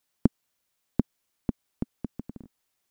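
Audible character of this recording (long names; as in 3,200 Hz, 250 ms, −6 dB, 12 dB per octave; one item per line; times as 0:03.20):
background noise floor −78 dBFS
spectral slope −9.5 dB per octave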